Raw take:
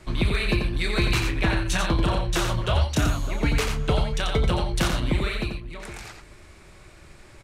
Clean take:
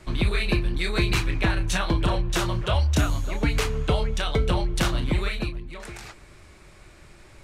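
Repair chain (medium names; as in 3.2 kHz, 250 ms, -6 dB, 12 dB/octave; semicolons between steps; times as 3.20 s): clip repair -13.5 dBFS; inverse comb 88 ms -5.5 dB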